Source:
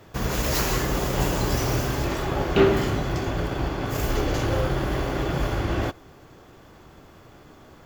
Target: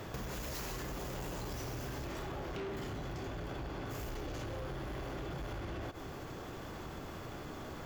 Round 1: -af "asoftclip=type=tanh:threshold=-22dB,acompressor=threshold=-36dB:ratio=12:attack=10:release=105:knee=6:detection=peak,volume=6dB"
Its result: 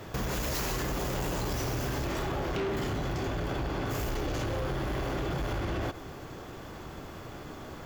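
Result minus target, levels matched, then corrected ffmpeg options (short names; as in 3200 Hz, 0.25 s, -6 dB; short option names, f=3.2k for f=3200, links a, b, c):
compressor: peak gain reduction -9 dB
-af "asoftclip=type=tanh:threshold=-22dB,acompressor=threshold=-46dB:ratio=12:attack=10:release=105:knee=6:detection=peak,volume=6dB"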